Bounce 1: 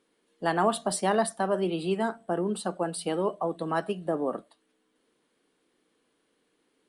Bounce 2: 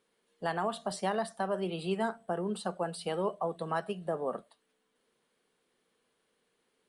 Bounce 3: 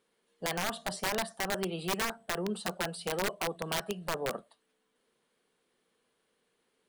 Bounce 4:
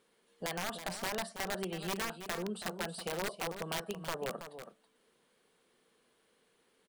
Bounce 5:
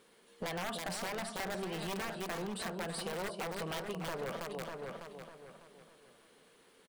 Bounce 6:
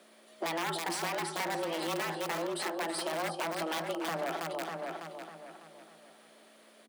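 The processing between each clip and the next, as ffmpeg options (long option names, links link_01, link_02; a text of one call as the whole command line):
ffmpeg -i in.wav -filter_complex "[0:a]acrossover=split=6900[link_01][link_02];[link_02]acompressor=threshold=-46dB:ratio=4:attack=1:release=60[link_03];[link_01][link_03]amix=inputs=2:normalize=0,equalizer=frequency=300:width_type=o:width=0.31:gain=-13.5,alimiter=limit=-18.5dB:level=0:latency=1:release=263,volume=-2.5dB" out.wav
ffmpeg -i in.wav -af "aeval=exprs='(mod(16.8*val(0)+1,2)-1)/16.8':channel_layout=same" out.wav
ffmpeg -i in.wav -af "acompressor=threshold=-54dB:ratio=1.5,aecho=1:1:326:0.316,volume=4dB" out.wav
ffmpeg -i in.wav -filter_complex "[0:a]asoftclip=type=hard:threshold=-38.5dB,asplit=2[link_01][link_02];[link_02]adelay=601,lowpass=frequency=4100:poles=1,volume=-9dB,asplit=2[link_03][link_04];[link_04]adelay=601,lowpass=frequency=4100:poles=1,volume=0.3,asplit=2[link_05][link_06];[link_06]adelay=601,lowpass=frequency=4100:poles=1,volume=0.3[link_07];[link_01][link_03][link_05][link_07]amix=inputs=4:normalize=0,acompressor=threshold=-44dB:ratio=6,volume=7.5dB" out.wav
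ffmpeg -i in.wav -af "aeval=exprs='val(0)+0.000282*(sin(2*PI*60*n/s)+sin(2*PI*2*60*n/s)/2+sin(2*PI*3*60*n/s)/3+sin(2*PI*4*60*n/s)/4+sin(2*PI*5*60*n/s)/5)':channel_layout=same,afreqshift=160,volume=4.5dB" out.wav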